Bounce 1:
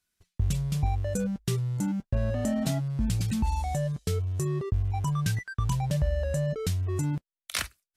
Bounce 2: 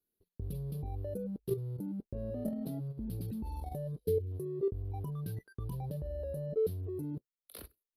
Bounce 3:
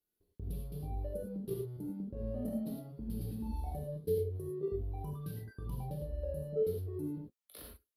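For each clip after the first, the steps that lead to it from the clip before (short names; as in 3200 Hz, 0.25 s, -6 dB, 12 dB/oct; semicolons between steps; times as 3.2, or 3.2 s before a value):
spectral gain 4.06–4.31, 480–1500 Hz -21 dB; EQ curve 130 Hz 0 dB, 440 Hz +15 dB, 670 Hz 0 dB, 2100 Hz -15 dB, 4400 Hz -5 dB, 7300 Hz -29 dB, 11000 Hz +7 dB; level quantiser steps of 10 dB; gain -8 dB
non-linear reverb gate 0.13 s flat, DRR -2 dB; gain -4.5 dB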